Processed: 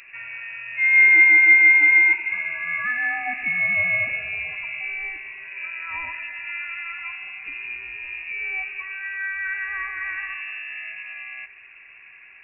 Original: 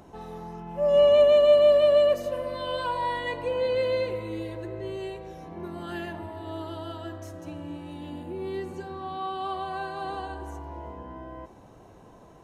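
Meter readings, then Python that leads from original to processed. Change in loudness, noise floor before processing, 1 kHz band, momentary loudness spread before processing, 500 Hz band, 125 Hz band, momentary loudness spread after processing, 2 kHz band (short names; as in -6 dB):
+6.5 dB, -51 dBFS, -5.5 dB, 23 LU, -26.0 dB, -10.5 dB, 22 LU, +25.0 dB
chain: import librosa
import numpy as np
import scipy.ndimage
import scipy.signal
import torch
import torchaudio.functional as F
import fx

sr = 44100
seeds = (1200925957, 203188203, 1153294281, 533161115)

y = fx.freq_invert(x, sr, carrier_hz=2700)
y = F.gain(torch.from_numpy(y), 4.0).numpy()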